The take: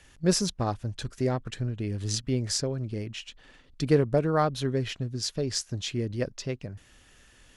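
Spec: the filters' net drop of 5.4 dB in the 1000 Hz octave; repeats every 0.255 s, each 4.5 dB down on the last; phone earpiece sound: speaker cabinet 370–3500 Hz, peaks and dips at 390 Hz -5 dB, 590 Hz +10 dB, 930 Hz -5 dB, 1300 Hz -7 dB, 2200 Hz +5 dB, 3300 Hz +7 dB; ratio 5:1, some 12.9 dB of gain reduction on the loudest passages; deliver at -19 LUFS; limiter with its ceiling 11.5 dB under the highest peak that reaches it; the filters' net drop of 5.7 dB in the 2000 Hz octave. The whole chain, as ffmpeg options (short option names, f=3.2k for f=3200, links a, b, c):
-af "equalizer=f=1k:t=o:g=-4.5,equalizer=f=2k:t=o:g=-8,acompressor=threshold=-32dB:ratio=5,alimiter=level_in=6dB:limit=-24dB:level=0:latency=1,volume=-6dB,highpass=370,equalizer=f=390:t=q:w=4:g=-5,equalizer=f=590:t=q:w=4:g=10,equalizer=f=930:t=q:w=4:g=-5,equalizer=f=1.3k:t=q:w=4:g=-7,equalizer=f=2.2k:t=q:w=4:g=5,equalizer=f=3.3k:t=q:w=4:g=7,lowpass=f=3.5k:w=0.5412,lowpass=f=3.5k:w=1.3066,aecho=1:1:255|510|765|1020|1275|1530|1785|2040|2295:0.596|0.357|0.214|0.129|0.0772|0.0463|0.0278|0.0167|0.01,volume=23.5dB"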